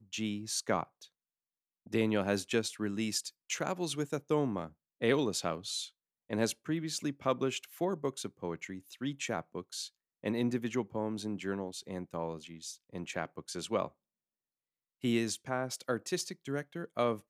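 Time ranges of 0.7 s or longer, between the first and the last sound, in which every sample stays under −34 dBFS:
0:00.83–0:01.94
0:13.86–0:15.04

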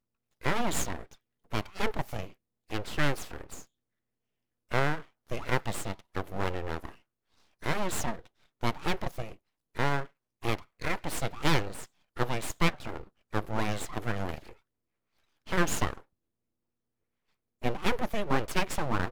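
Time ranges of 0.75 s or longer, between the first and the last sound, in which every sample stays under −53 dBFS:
0:03.65–0:04.70
0:14.57–0:15.46
0:16.03–0:17.62

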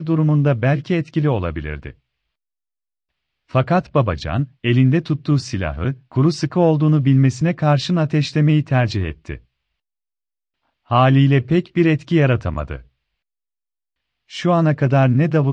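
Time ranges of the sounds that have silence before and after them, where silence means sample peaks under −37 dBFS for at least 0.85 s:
0:03.51–0:09.37
0:10.90–0:12.81

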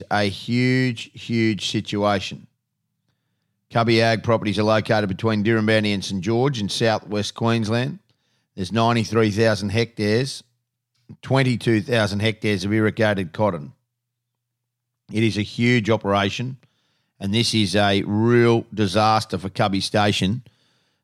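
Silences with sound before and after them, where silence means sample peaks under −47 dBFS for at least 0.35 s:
0:02.45–0:03.71
0:08.11–0:08.57
0:10.42–0:11.09
0:13.71–0:15.09
0:16.65–0:17.20

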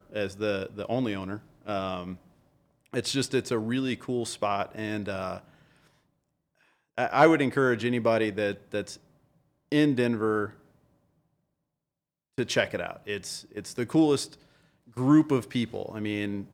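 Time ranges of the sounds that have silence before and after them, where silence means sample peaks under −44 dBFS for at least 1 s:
0:06.98–0:10.54

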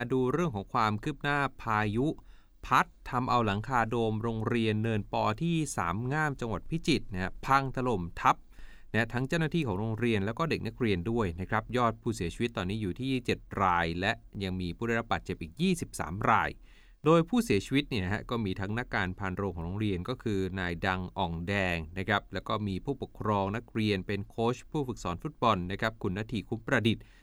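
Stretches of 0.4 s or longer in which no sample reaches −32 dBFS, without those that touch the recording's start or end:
0:02.12–0:02.66
0:08.32–0:08.94
0:16.51–0:17.06

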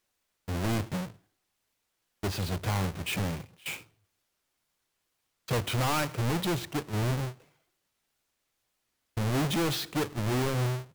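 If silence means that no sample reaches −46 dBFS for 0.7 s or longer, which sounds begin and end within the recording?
0:02.23–0:03.81
0:05.48–0:07.33

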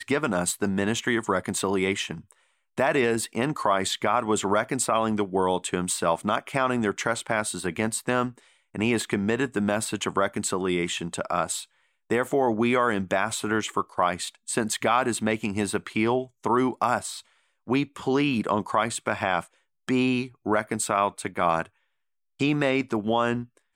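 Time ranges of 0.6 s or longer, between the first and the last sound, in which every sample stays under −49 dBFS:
0:21.68–0:22.39

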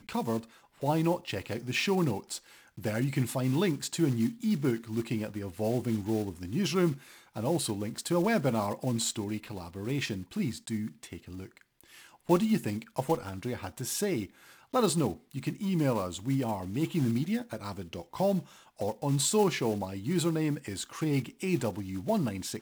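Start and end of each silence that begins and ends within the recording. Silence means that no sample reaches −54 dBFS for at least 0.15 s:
0:11.62–0:11.81

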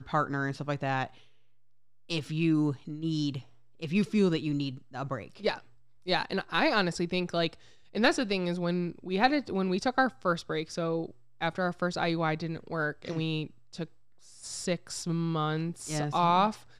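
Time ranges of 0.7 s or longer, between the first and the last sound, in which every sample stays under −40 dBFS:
0:01.07–0:02.10

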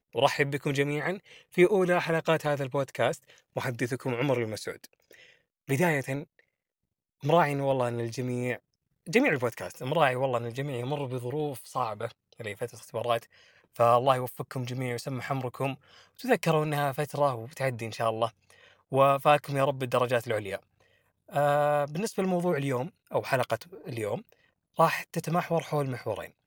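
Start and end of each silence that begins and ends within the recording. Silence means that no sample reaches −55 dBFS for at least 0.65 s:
0:06.40–0:07.21

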